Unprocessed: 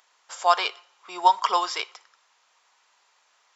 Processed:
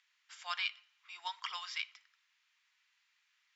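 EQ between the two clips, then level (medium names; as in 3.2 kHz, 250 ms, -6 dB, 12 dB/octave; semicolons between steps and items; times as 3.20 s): ladder band-pass 2.5 kHz, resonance 35%; treble shelf 2.2 kHz +7 dB; -2.5 dB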